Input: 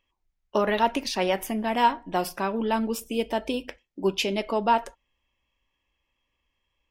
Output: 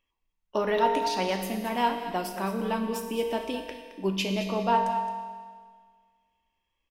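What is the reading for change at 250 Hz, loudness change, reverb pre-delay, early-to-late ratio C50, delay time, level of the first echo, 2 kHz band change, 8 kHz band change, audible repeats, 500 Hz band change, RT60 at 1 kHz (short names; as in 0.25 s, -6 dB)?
-2.0 dB, -2.0 dB, 4 ms, 5.0 dB, 0.218 s, -11.5 dB, -3.0 dB, -3.0 dB, 1, -2.0 dB, 1.7 s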